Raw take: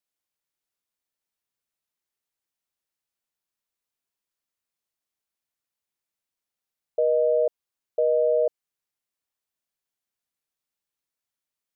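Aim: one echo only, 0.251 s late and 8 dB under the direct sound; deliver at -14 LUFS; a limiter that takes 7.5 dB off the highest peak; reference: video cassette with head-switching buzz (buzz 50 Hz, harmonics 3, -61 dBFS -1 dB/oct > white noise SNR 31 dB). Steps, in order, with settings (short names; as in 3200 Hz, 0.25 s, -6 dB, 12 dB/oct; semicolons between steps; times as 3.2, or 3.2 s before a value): limiter -22 dBFS; echo 0.251 s -8 dB; buzz 50 Hz, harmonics 3, -61 dBFS -1 dB/oct; white noise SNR 31 dB; gain +19 dB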